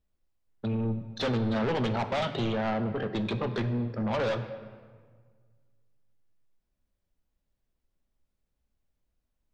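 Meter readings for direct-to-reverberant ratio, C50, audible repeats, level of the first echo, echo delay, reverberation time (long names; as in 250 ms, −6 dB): 9.0 dB, 10.5 dB, no echo audible, no echo audible, no echo audible, 1.7 s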